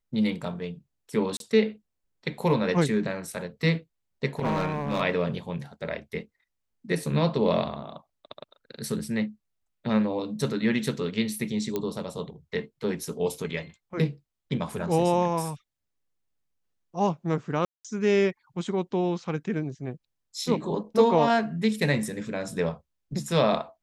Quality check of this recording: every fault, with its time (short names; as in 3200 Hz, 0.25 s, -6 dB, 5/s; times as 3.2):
1.37–1.4 gap 32 ms
4.39–5.02 clipped -22 dBFS
11.76 pop -15 dBFS
17.65–17.85 gap 0.196 s
20.46 gap 3.2 ms